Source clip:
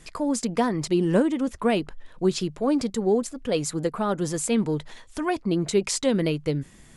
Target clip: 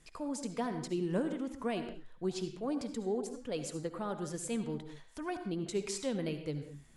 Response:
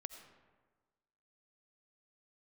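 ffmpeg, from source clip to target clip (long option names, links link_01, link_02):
-filter_complex "[1:a]atrim=start_sample=2205,afade=type=out:start_time=0.31:duration=0.01,atrim=end_sample=14112,asetrate=52920,aresample=44100[link_01];[0:a][link_01]afir=irnorm=-1:irlink=0,volume=-6.5dB"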